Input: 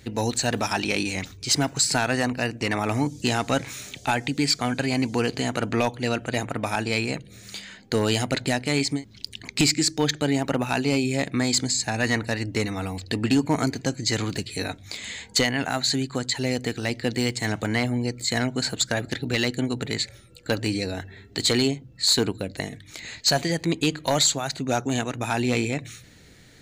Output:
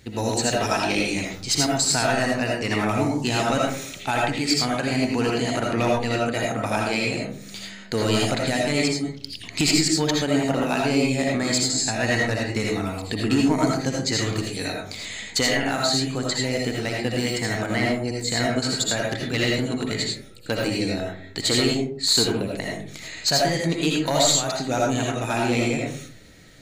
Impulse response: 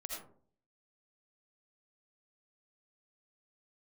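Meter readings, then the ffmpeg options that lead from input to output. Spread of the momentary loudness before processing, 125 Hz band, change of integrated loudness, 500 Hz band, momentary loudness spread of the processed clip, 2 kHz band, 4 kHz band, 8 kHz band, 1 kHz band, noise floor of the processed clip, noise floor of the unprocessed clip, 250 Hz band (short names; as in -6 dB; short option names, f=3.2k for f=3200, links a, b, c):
10 LU, +1.0 dB, +2.0 dB, +3.0 dB, 9 LU, +2.0 dB, +1.5 dB, +1.5 dB, +3.0 dB, -40 dBFS, -50 dBFS, +2.0 dB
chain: -filter_complex "[1:a]atrim=start_sample=2205[a];[0:a][a]afir=irnorm=-1:irlink=0,volume=3.5dB"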